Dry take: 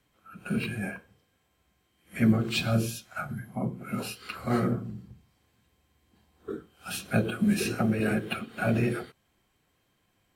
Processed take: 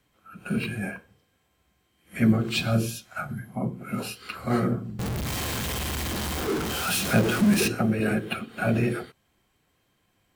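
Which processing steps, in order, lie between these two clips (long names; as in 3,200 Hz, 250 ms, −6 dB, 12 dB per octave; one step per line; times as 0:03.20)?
0:04.99–0:07.68: converter with a step at zero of −25.5 dBFS
level +2 dB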